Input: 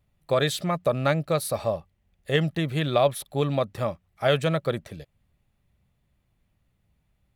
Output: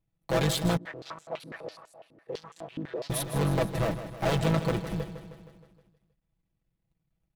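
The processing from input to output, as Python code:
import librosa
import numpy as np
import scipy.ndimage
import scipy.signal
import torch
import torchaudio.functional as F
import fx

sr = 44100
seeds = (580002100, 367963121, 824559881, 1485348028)

y = fx.cycle_switch(x, sr, every=3, mode='muted')
y = fx.low_shelf(y, sr, hz=500.0, db=6.0)
y = np.clip(y, -10.0 ** (-15.0 / 20.0), 10.0 ** (-15.0 / 20.0))
y = fx.leveller(y, sr, passes=3)
y = y + 0.65 * np.pad(y, (int(6.1 * sr / 1000.0), 0))[:len(y)]
y = fx.echo_feedback(y, sr, ms=157, feedback_pct=58, wet_db=-11.5)
y = fx.filter_held_bandpass(y, sr, hz=12.0, low_hz=280.0, high_hz=7400.0, at=(0.77, 3.1))
y = y * librosa.db_to_amplitude(-8.0)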